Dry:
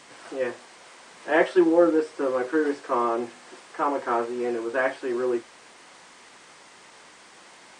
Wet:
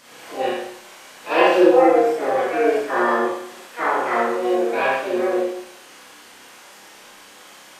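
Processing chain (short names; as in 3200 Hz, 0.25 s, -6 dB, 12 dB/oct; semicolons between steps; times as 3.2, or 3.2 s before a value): flutter echo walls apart 5.2 m, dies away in 0.34 s; harmoniser +7 st -2 dB; Schroeder reverb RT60 0.7 s, combs from 30 ms, DRR -3.5 dB; gain -3 dB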